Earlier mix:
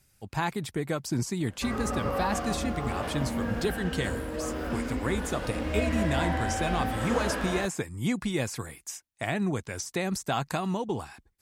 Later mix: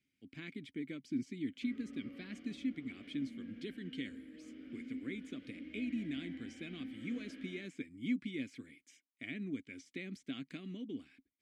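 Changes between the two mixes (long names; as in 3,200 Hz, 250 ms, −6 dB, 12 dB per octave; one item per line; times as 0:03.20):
background −7.5 dB
master: add formant filter i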